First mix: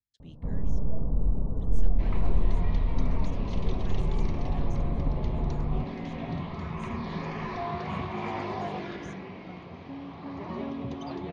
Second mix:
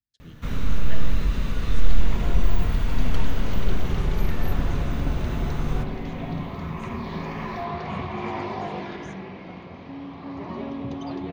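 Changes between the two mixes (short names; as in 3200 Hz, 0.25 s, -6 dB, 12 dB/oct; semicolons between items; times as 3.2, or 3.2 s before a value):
first sound: remove steep low-pass 900 Hz 36 dB/oct; reverb: on, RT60 3.0 s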